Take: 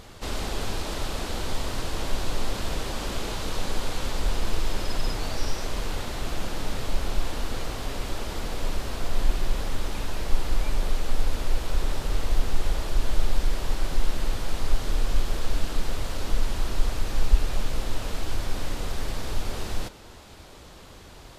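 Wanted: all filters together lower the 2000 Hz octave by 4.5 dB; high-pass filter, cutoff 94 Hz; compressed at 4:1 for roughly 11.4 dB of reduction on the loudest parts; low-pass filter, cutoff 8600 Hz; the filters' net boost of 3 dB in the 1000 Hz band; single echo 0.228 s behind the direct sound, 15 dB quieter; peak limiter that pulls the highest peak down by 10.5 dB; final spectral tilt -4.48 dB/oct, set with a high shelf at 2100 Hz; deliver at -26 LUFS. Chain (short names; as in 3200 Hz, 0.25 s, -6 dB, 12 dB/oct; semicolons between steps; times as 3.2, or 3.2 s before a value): HPF 94 Hz; LPF 8600 Hz; bell 1000 Hz +6 dB; bell 2000 Hz -6.5 dB; high shelf 2100 Hz -3 dB; compressor 4:1, threshold -39 dBFS; limiter -37 dBFS; echo 0.228 s -15 dB; gain +20 dB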